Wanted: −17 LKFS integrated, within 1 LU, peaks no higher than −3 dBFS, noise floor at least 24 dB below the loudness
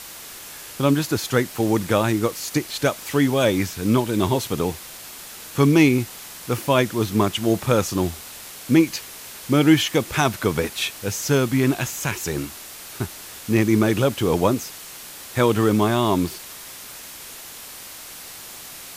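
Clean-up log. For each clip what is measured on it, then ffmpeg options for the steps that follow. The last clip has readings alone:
background noise floor −39 dBFS; target noise floor −45 dBFS; integrated loudness −21.0 LKFS; sample peak −4.0 dBFS; target loudness −17.0 LKFS
→ -af "afftdn=noise_reduction=6:noise_floor=-39"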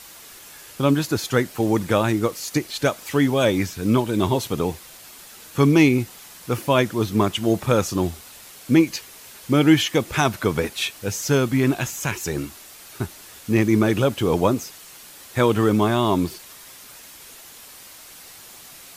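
background noise floor −44 dBFS; target noise floor −45 dBFS
→ -af "afftdn=noise_reduction=6:noise_floor=-44"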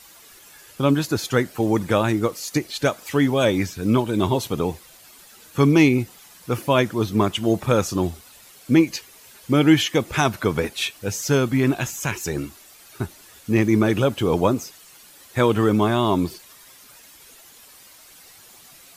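background noise floor −48 dBFS; integrated loudness −21.0 LKFS; sample peak −4.5 dBFS; target loudness −17.0 LKFS
→ -af "volume=4dB,alimiter=limit=-3dB:level=0:latency=1"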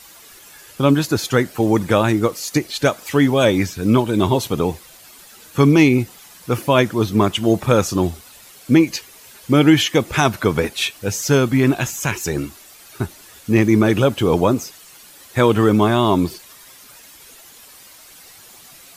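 integrated loudness −17.5 LKFS; sample peak −3.0 dBFS; background noise floor −44 dBFS

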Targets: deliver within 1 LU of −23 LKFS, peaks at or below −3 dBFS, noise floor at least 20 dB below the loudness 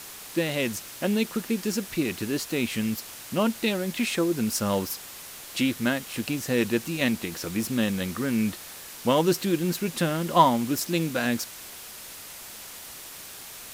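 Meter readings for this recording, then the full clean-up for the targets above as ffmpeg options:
background noise floor −42 dBFS; target noise floor −47 dBFS; integrated loudness −26.5 LKFS; sample peak −5.0 dBFS; target loudness −23.0 LKFS
→ -af "afftdn=noise_reduction=6:noise_floor=-42"
-af "volume=3.5dB,alimiter=limit=-3dB:level=0:latency=1"

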